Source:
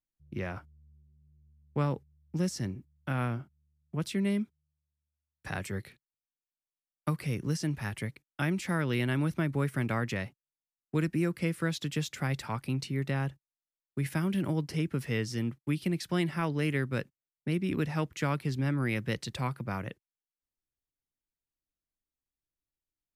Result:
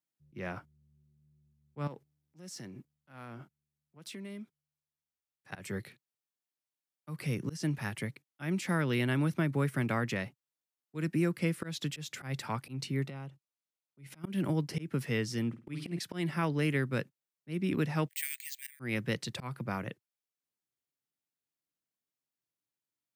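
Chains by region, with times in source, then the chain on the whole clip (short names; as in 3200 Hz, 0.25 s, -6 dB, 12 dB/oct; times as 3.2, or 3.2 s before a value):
1.87–5.52 low shelf 190 Hz -10 dB + compressor 8:1, threshold -44 dBFS + sample leveller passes 1
13.06–14.24 high shelf 9900 Hz -7 dB + notch 1700 Hz, Q 5.3 + compressor 4:1, threshold -41 dBFS
15.48–15.99 LPF 10000 Hz + flutter echo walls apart 8.9 m, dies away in 0.33 s
18.08–18.8 steep high-pass 1800 Hz 72 dB/oct + careless resampling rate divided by 4×, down filtered, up zero stuff
whole clip: HPF 110 Hz 24 dB/oct; auto swell 0.154 s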